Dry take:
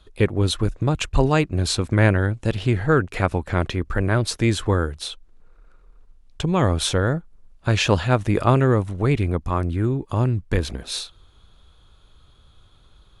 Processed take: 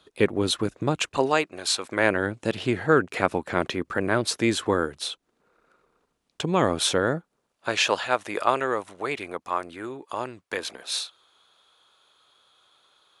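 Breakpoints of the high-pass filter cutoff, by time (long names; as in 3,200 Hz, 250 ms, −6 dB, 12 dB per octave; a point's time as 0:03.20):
0:00.90 210 Hz
0:01.71 800 Hz
0:02.27 230 Hz
0:07.16 230 Hz
0:07.97 600 Hz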